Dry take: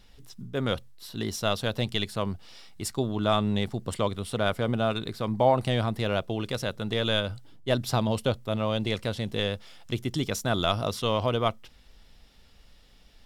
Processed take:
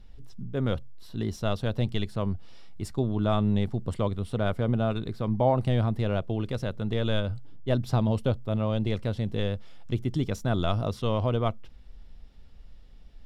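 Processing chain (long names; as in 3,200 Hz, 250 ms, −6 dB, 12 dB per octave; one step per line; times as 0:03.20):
spectral tilt −2.5 dB per octave
level −4 dB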